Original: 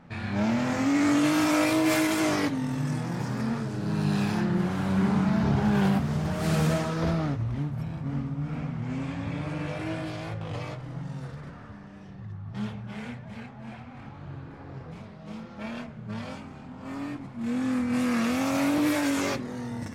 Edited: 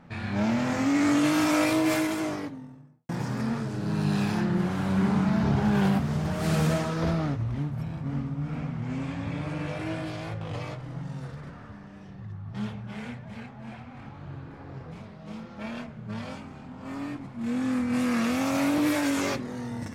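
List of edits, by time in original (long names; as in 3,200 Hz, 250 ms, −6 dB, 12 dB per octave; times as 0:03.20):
0:01.63–0:03.09: fade out and dull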